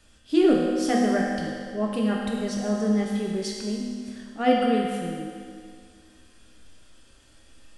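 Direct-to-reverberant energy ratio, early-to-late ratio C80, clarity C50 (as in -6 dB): -2.5 dB, 2.0 dB, 0.5 dB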